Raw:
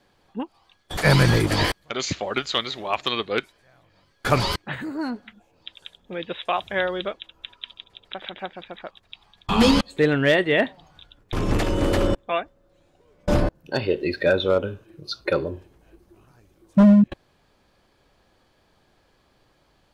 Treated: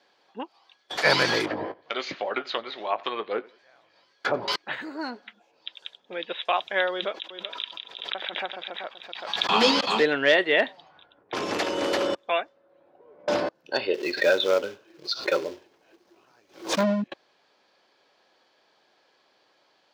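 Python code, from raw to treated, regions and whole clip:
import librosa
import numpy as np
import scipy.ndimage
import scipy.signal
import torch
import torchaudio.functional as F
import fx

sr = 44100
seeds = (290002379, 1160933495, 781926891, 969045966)

y = fx.chain(x, sr, fx.env_lowpass_down(base_hz=570.0, full_db=-18.5),
    fx.doubler(ms=19.0, db=-11.5),
    fx.echo_feedback(ms=90, feedback_pct=33, wet_db=-23), at=(1.45, 4.48))
y = fx.chain(y, sr, fx.echo_single(ms=382, db=-12.5),
    fx.pre_swell(db_per_s=58.0), at=(6.92, 10.03))
y = fx.chain(y, sr, fx.peak_eq(hz=11000.0, db=6.5, octaves=1.3),
    fx.env_lowpass(base_hz=910.0, full_db=-21.5),
    fx.band_squash(depth_pct=40), at=(10.56, 13.29))
y = fx.chain(y, sr, fx.quant_float(bits=2),
    fx.pre_swell(db_per_s=140.0), at=(13.94, 16.83))
y = scipy.signal.sosfilt(scipy.signal.butter(2, 430.0, 'highpass', fs=sr, output='sos'), y)
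y = fx.high_shelf_res(y, sr, hz=7100.0, db=-10.0, q=1.5)
y = fx.notch(y, sr, hz=1200.0, q=24.0)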